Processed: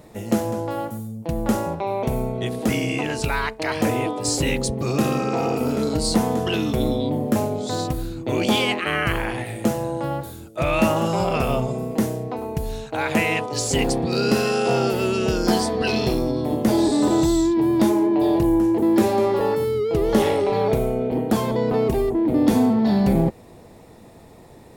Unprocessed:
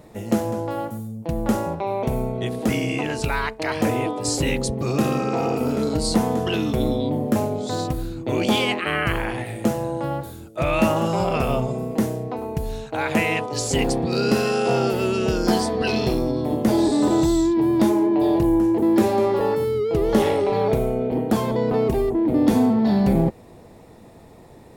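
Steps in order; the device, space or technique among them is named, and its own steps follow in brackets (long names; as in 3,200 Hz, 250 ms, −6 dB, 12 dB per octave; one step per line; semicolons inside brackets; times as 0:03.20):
exciter from parts (in parallel at −8 dB: high-pass filter 3,100 Hz 6 dB per octave + soft clipping −28 dBFS, distortion −12 dB)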